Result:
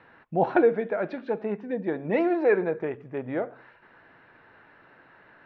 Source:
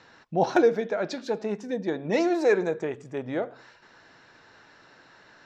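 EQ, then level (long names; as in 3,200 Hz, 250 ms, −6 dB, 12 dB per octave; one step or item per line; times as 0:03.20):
low-pass filter 2,600 Hz 24 dB per octave
0.0 dB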